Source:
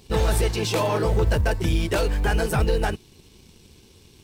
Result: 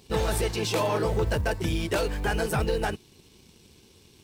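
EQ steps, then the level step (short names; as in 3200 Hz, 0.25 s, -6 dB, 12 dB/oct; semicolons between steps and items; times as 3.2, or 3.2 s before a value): low shelf 66 Hz -9.5 dB; -2.5 dB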